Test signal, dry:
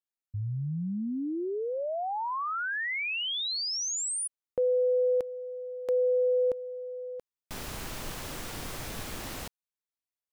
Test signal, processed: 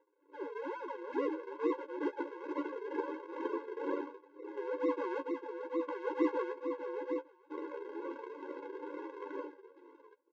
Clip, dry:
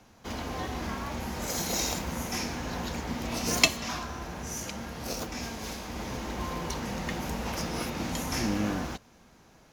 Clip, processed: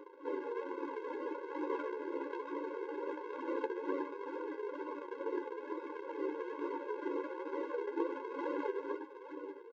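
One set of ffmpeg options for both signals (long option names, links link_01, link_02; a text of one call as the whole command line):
ffmpeg -i in.wav -af "afftfilt=real='re*pow(10,14/40*sin(2*PI*(0.83*log(max(b,1)*sr/1024/100)/log(2)-(-0.84)*(pts-256)/sr)))':imag='im*pow(10,14/40*sin(2*PI*(0.83*log(max(b,1)*sr/1024/100)/log(2)-(-0.84)*(pts-256)/sr)))':win_size=1024:overlap=0.75,equalizer=frequency=700:width_type=o:width=0.4:gain=9.5,bandreject=frequency=60:width_type=h:width=6,bandreject=frequency=120:width_type=h:width=6,bandreject=frequency=180:width_type=h:width=6,bandreject=frequency=240:width_type=h:width=6,bandreject=frequency=300:width_type=h:width=6,bandreject=frequency=360:width_type=h:width=6,bandreject=frequency=420:width_type=h:width=6,acompressor=mode=upward:threshold=-34dB:ratio=2.5:attack=1.2:release=615:knee=2.83:detection=peak,aecho=1:1:57|653:0.2|0.141,aresample=16000,acrusher=samples=38:mix=1:aa=0.000001:lfo=1:lforange=38:lforate=2.2,aresample=44100,lowpass=1200,flanger=delay=9.5:depth=4.8:regen=25:speed=0.22:shape=triangular,acompressor=threshold=-40dB:ratio=2:attack=0.6:release=50:knee=1:detection=peak,flanger=delay=0.8:depth=1.7:regen=59:speed=1.2:shape=sinusoidal,afftfilt=real='re*eq(mod(floor(b*sr/1024/280),2),1)':imag='im*eq(mod(floor(b*sr/1024/280),2),1)':win_size=1024:overlap=0.75,volume=14dB" out.wav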